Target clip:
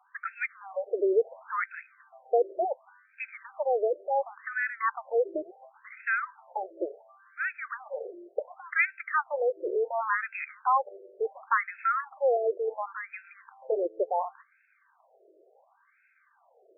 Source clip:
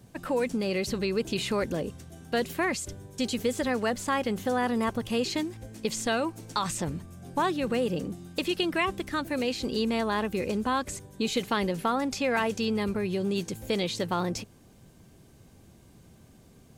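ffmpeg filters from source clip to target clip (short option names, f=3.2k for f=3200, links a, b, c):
-af "asubboost=boost=3:cutoff=180,afftfilt=real='re*between(b*sr/1024,470*pow(1900/470,0.5+0.5*sin(2*PI*0.7*pts/sr))/1.41,470*pow(1900/470,0.5+0.5*sin(2*PI*0.7*pts/sr))*1.41)':imag='im*between(b*sr/1024,470*pow(1900/470,0.5+0.5*sin(2*PI*0.7*pts/sr))/1.41,470*pow(1900/470,0.5+0.5*sin(2*PI*0.7*pts/sr))*1.41)':win_size=1024:overlap=0.75,volume=7dB"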